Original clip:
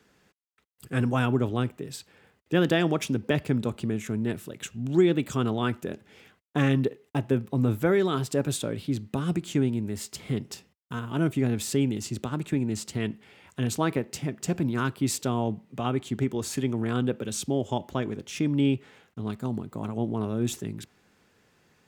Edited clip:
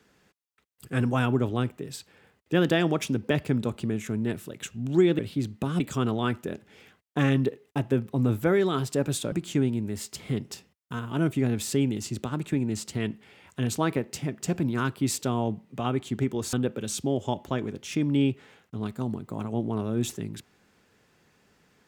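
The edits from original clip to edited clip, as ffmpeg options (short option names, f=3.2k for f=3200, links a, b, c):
-filter_complex "[0:a]asplit=5[a][b][c][d][e];[a]atrim=end=5.192[f];[b]atrim=start=8.708:end=9.322[g];[c]atrim=start=5.188:end=8.712[h];[d]atrim=start=9.318:end=16.532[i];[e]atrim=start=16.968[j];[f][g]acrossfade=d=0.004:c1=hsin:c2=hsin[k];[k][h]acrossfade=d=0.004:c1=hsin:c2=hsin[l];[l][i]acrossfade=d=0.004:c1=hsin:c2=hsin[m];[m][j]acrossfade=d=0.004:c1=hsin:c2=hsin"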